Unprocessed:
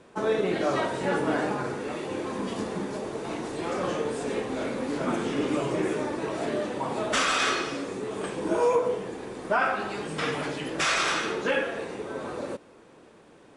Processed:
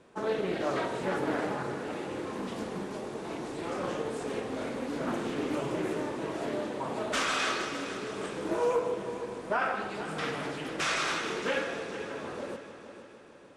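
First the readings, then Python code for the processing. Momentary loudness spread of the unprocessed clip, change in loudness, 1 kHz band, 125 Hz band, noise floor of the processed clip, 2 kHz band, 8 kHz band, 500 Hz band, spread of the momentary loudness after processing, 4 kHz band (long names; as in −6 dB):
10 LU, −4.5 dB, −4.5 dB, −4.5 dB, −50 dBFS, −4.5 dB, −5.0 dB, −4.5 dB, 9 LU, −4.5 dB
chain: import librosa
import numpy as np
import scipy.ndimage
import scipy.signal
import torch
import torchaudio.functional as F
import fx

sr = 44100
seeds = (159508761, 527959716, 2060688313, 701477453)

y = fx.echo_heads(x, sr, ms=154, heads='first and third', feedback_pct=59, wet_db=-13.0)
y = fx.doppler_dist(y, sr, depth_ms=0.31)
y = F.gain(torch.from_numpy(y), -5.0).numpy()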